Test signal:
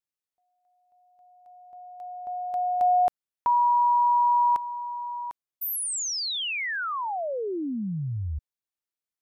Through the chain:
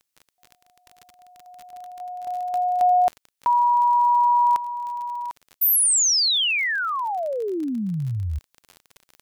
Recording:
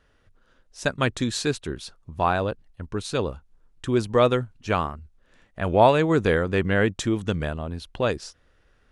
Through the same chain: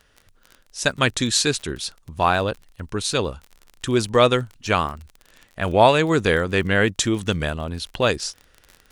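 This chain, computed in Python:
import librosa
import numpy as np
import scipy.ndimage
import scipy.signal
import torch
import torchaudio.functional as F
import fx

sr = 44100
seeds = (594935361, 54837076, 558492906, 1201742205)

p1 = fx.high_shelf(x, sr, hz=2100.0, db=10.0)
p2 = fx.rider(p1, sr, range_db=5, speed_s=2.0)
p3 = p1 + F.gain(torch.from_numpy(p2), 0.5).numpy()
p4 = fx.dmg_crackle(p3, sr, seeds[0], per_s=38.0, level_db=-26.0)
y = F.gain(torch.from_numpy(p4), -5.0).numpy()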